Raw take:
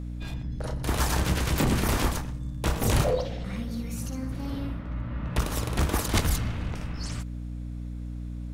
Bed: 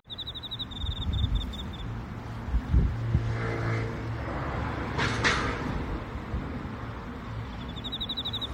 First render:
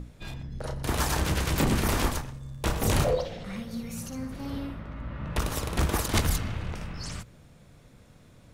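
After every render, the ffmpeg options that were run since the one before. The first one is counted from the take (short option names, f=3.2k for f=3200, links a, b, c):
-af "bandreject=f=60:t=h:w=6,bandreject=f=120:t=h:w=6,bandreject=f=180:t=h:w=6,bandreject=f=240:t=h:w=6,bandreject=f=300:t=h:w=6"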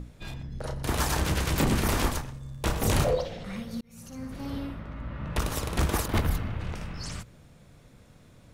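-filter_complex "[0:a]asplit=3[a][b][c];[a]afade=t=out:st=6.04:d=0.02[d];[b]equalizer=f=7.2k:t=o:w=2:g=-13,afade=t=in:st=6.04:d=0.02,afade=t=out:st=6.59:d=0.02[e];[c]afade=t=in:st=6.59:d=0.02[f];[d][e][f]amix=inputs=3:normalize=0,asplit=2[g][h];[g]atrim=end=3.81,asetpts=PTS-STARTPTS,afade=t=out:st=3.806:d=0.004:c=hsin[i];[h]atrim=start=3.81,asetpts=PTS-STARTPTS,afade=t=in:d=0.57[j];[i][j]concat=n=2:v=0:a=1"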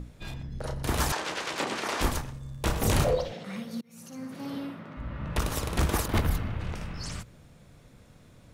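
-filter_complex "[0:a]asettb=1/sr,asplit=3[a][b][c];[a]atrim=end=1.124[d];[b]atrim=start=1.12:end=2.01,asetpts=PTS-STARTPTS,afade=t=in:d=0.004:c=qsin,afade=t=out:st=0.886:d=0.004:c=qsin,highpass=460,lowpass=6.2k[e];[c]atrim=start=2.006[f];[d][e]acrossfade=d=0.004:c1=hsin:c2=qsin[g];[g][f]acrossfade=d=0.004:c1=qsin:c2=hsin,asettb=1/sr,asplit=3[h][i][j];[h]atrim=end=3.324[k];[i]atrim=start=3.32:end=4.97,asetpts=PTS-STARTPTS,afade=t=in:d=0.004:c=qsin,afade=t=out:st=1.646:d=0.004:c=qsin,highpass=f=150:w=0.5412,highpass=f=150:w=1.3066[l];[j]atrim=start=4.966[m];[k][l]acrossfade=d=0.004:c1=hsin:c2=qsin[n];[n][m]acrossfade=d=0.004:c1=qsin:c2=hsin"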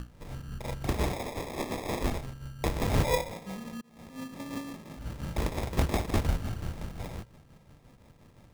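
-af "tremolo=f=5.7:d=0.49,acrusher=samples=30:mix=1:aa=0.000001"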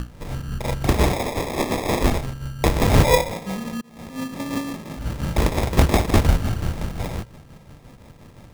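-af "volume=11dB"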